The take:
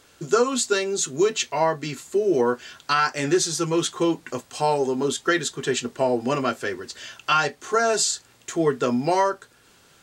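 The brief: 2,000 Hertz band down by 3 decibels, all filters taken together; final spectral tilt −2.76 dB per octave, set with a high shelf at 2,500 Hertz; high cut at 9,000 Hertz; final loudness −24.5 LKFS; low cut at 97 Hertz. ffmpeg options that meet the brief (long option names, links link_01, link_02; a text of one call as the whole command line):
ffmpeg -i in.wav -af "highpass=97,lowpass=9000,equalizer=frequency=2000:width_type=o:gain=-7,highshelf=frequency=2500:gain=5.5,volume=-1.5dB" out.wav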